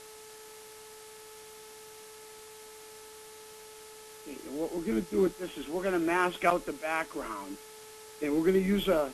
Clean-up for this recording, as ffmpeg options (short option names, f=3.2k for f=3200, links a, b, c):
-af "adeclick=t=4,bandreject=f=433.3:t=h:w=4,bandreject=f=866.6:t=h:w=4,bandreject=f=1.2999k:t=h:w=4,bandreject=f=1.7332k:t=h:w=4,bandreject=f=2.1665k:t=h:w=4,afwtdn=0.0032"